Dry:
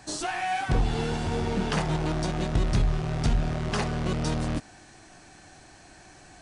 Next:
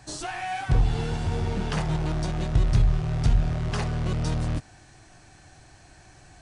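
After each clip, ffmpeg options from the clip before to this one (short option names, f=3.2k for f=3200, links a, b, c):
-af "lowshelf=f=160:t=q:w=1.5:g=6,volume=-2.5dB"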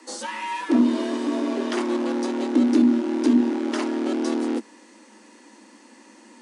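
-af "afreqshift=200,volume=1.5dB"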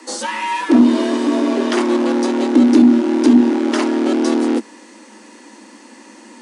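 -af "acontrast=49,volume=2.5dB"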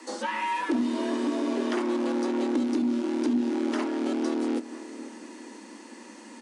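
-filter_complex "[0:a]acrossover=split=2800|6500[a][b][c];[a]acompressor=threshold=-20dB:ratio=4[d];[b]acompressor=threshold=-43dB:ratio=4[e];[c]acompressor=threshold=-49dB:ratio=4[f];[d][e][f]amix=inputs=3:normalize=0,asplit=2[g][h];[h]adelay=489,lowpass=f=2k:p=1,volume=-15dB,asplit=2[i][j];[j]adelay=489,lowpass=f=2k:p=1,volume=0.53,asplit=2[k][l];[l]adelay=489,lowpass=f=2k:p=1,volume=0.53,asplit=2[m][n];[n]adelay=489,lowpass=f=2k:p=1,volume=0.53,asplit=2[o][p];[p]adelay=489,lowpass=f=2k:p=1,volume=0.53[q];[g][i][k][m][o][q]amix=inputs=6:normalize=0,volume=-5.5dB"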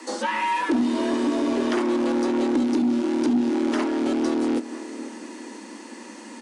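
-af "asoftclip=type=tanh:threshold=-18.5dB,volume=5.5dB"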